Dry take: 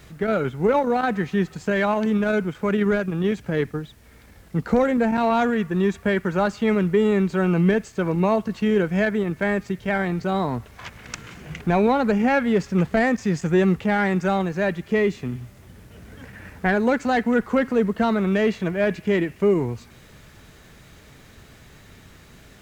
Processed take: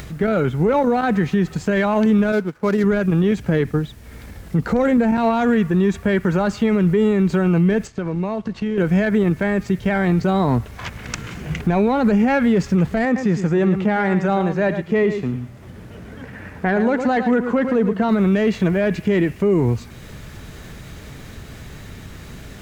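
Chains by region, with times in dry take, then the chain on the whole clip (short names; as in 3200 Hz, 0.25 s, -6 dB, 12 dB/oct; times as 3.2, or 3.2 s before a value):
2.32–2.84 median filter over 15 samples + low shelf 160 Hz -12 dB + upward expander, over -42 dBFS
7.87–8.78 G.711 law mismatch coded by A + LPF 6000 Hz + compressor 3:1, threshold -32 dBFS
13.05–18.09 HPF 720 Hz 6 dB/oct + tilt -3 dB/oct + echo 0.11 s -11 dB
whole clip: low shelf 300 Hz +5.5 dB; upward compressor, threshold -37 dBFS; limiter -15.5 dBFS; gain +6 dB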